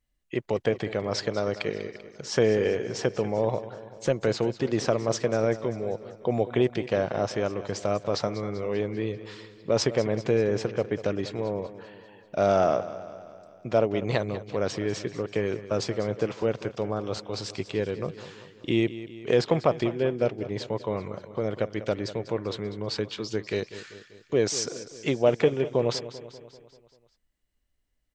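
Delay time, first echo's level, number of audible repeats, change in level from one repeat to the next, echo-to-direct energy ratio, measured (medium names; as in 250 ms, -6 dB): 195 ms, -14.5 dB, 5, -5.0 dB, -13.0 dB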